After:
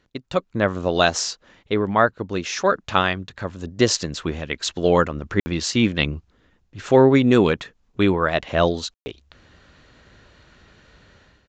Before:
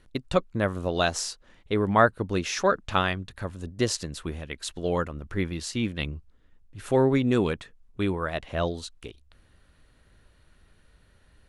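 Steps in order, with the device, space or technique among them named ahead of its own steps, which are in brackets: call with lost packets (high-pass 130 Hz 6 dB/octave; resampled via 16 kHz; level rider gain up to 13.5 dB; lost packets of 60 ms bursts); trim -1 dB

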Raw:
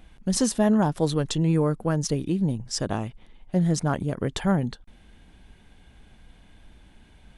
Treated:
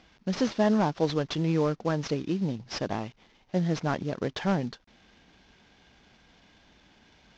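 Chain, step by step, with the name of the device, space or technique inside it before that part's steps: early wireless headset (high-pass 260 Hz 6 dB/octave; CVSD coder 32 kbps)

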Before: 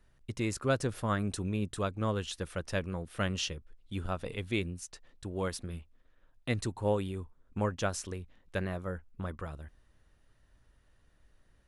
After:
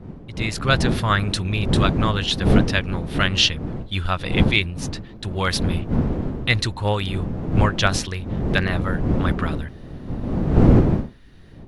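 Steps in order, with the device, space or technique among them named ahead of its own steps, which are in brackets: graphic EQ 250/500/2000/4000/8000 Hz -9/-7/+4/+9/-8 dB; smartphone video outdoors (wind noise 220 Hz -35 dBFS; level rider gain up to 15.5 dB; AAC 96 kbps 44.1 kHz)

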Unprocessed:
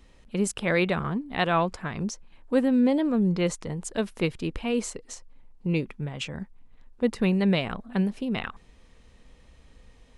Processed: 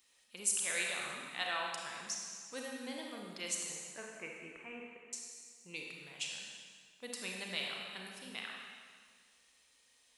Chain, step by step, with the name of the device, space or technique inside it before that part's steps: 3.76–5.13 s: steep low-pass 2.4 kHz 48 dB/octave; stairwell (reverberation RT60 1.8 s, pre-delay 31 ms, DRR -1 dB); differentiator

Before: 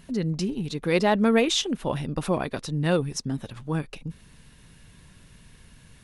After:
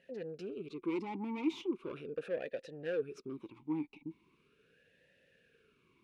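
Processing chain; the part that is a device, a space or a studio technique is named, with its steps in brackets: talk box (valve stage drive 26 dB, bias 0.55; talking filter e-u 0.39 Hz); trim +3.5 dB

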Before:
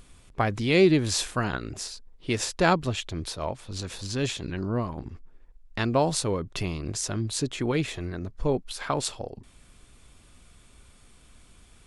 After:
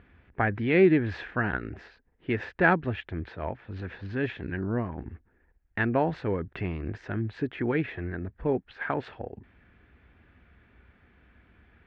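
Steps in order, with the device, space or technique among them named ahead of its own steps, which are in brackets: bass cabinet (cabinet simulation 67–2300 Hz, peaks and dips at 70 Hz +5 dB, 140 Hz -5 dB, 580 Hz -4 dB, 1.1 kHz -7 dB, 1.7 kHz +8 dB)

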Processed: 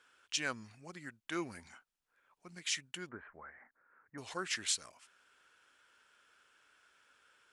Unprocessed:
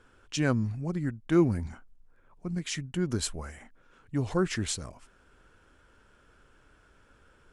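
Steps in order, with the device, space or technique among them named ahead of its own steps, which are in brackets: filter by subtraction (in parallel: low-pass 2.8 kHz 12 dB/octave + polarity flip); 3.09–4.18 s: on the sum: steep low-pass 1.9 kHz 48 dB/octave; trim -1.5 dB

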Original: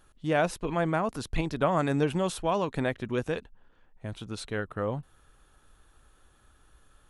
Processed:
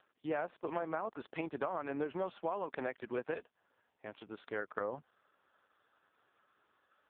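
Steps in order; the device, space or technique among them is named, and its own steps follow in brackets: 2.49–3.35 s: high-pass 130 Hz 6 dB/octave; voicemail (band-pass 380–2600 Hz; compression 12:1, threshold -30 dBFS, peak gain reduction 10 dB; trim -1.5 dB; AMR-NB 4.75 kbps 8 kHz)

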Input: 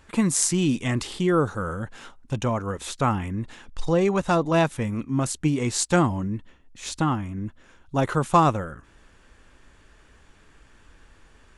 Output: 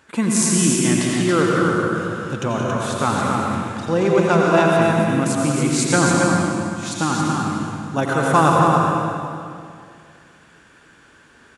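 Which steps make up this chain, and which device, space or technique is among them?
stadium PA (high-pass 140 Hz 12 dB/octave; peaking EQ 1.5 kHz +6 dB 0.22 oct; loudspeakers at several distances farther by 60 m -10 dB, 95 m -5 dB; reverberation RT60 2.3 s, pre-delay 81 ms, DRR -1 dB); 6.91–8.54 s: treble shelf 5.9 kHz +5 dB; trim +1.5 dB

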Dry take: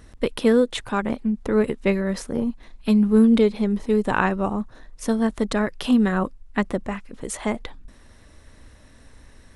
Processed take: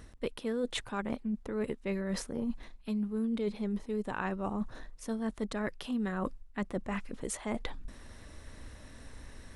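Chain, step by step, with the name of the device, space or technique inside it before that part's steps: compression on the reversed sound (reverse; compression 6:1, threshold -32 dBFS, peak gain reduction 19 dB; reverse)

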